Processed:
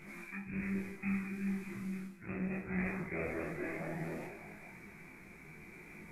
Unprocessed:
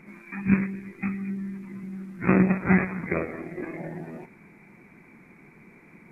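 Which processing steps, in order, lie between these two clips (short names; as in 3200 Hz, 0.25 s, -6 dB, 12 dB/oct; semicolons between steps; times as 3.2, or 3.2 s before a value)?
spectral trails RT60 0.50 s; ten-band EQ 125 Hz -8 dB, 250 Hz -10 dB, 500 Hz -7 dB, 1000 Hz -8 dB, 2000 Hz -6 dB; on a send: delay with a stepping band-pass 0.223 s, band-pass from 450 Hz, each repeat 0.7 oct, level -9.5 dB; on the sum: dynamic EQ 1200 Hz, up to -5 dB, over -48 dBFS, Q 1.5; reverse; compressor 20:1, threshold -40 dBFS, peak gain reduction 18 dB; reverse; detuned doubles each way 23 cents; gain +9.5 dB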